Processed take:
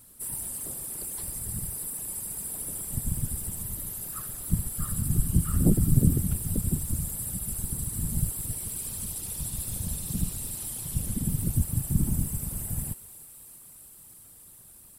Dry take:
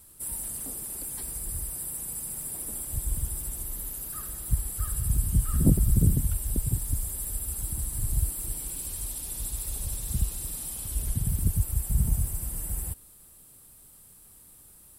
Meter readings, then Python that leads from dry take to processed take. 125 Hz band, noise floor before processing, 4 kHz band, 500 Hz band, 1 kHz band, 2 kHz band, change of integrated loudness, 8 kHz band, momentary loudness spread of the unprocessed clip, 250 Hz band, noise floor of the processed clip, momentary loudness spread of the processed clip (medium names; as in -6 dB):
+0.5 dB, -53 dBFS, +0.5 dB, +2.5 dB, +0.5 dB, +0.5 dB, 0.0 dB, +0.5 dB, 9 LU, +3.5 dB, -51 dBFS, 20 LU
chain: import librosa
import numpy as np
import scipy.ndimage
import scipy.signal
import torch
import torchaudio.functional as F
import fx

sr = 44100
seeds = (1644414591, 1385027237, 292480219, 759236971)

y = fx.echo_thinned(x, sr, ms=317, feedback_pct=82, hz=420.0, wet_db=-16)
y = fx.whisperise(y, sr, seeds[0])